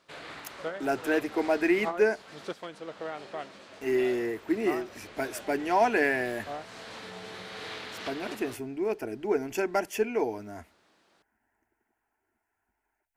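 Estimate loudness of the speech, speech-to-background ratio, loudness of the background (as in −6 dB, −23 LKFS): −29.0 LKFS, 12.0 dB, −41.0 LKFS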